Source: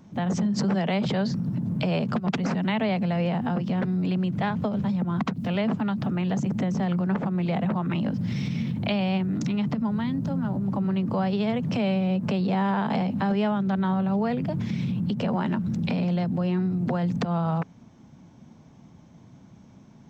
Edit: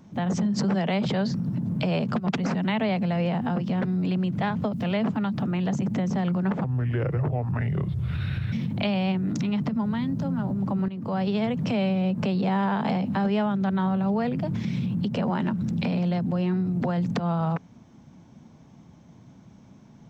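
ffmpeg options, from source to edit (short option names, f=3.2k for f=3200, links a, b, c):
-filter_complex "[0:a]asplit=5[a][b][c][d][e];[a]atrim=end=4.732[f];[b]atrim=start=5.368:end=7.284[g];[c]atrim=start=7.28:end=8.58,asetpts=PTS-STARTPTS,asetrate=30429,aresample=44100[h];[d]atrim=start=8.576:end=10.94,asetpts=PTS-STARTPTS,afade=t=out:st=2.36:d=0.004:c=hsin:silence=0.211349[i];[e]atrim=start=10.94,asetpts=PTS-STARTPTS,afade=t=in:d=0.36:silence=0.211349[j];[f][g]acrossfade=d=0.004:c1=hsin:c2=hsin[k];[k][h]acrossfade=d=0.004:c1=hsin:c2=hsin[l];[i][j]concat=n=2:v=0:a=1[m];[l][m]acrossfade=d=0.004:c1=hsin:c2=hsin"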